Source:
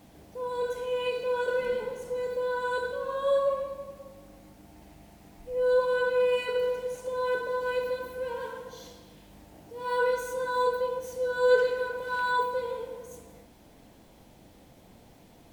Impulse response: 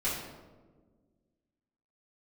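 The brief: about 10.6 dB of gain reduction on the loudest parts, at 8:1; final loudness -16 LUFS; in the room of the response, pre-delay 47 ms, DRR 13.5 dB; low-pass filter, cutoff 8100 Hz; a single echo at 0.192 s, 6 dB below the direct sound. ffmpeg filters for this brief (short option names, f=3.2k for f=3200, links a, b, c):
-filter_complex "[0:a]lowpass=8.1k,acompressor=threshold=-27dB:ratio=8,aecho=1:1:192:0.501,asplit=2[a][b];[1:a]atrim=start_sample=2205,adelay=47[c];[b][c]afir=irnorm=-1:irlink=0,volume=-21dB[d];[a][d]amix=inputs=2:normalize=0,volume=15.5dB"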